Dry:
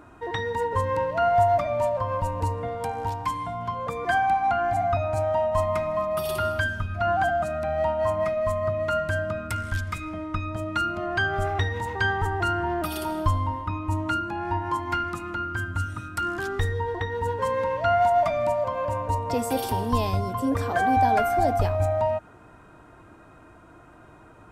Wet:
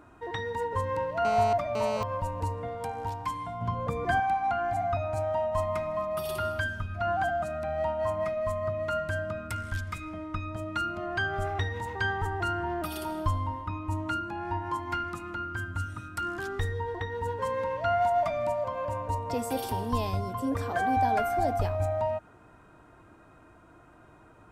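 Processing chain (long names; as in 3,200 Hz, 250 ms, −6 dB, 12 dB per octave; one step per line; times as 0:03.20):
0:01.25–0:02.03: phone interference −29 dBFS
0:03.61–0:04.20: low-shelf EQ 330 Hz +12 dB
level −5 dB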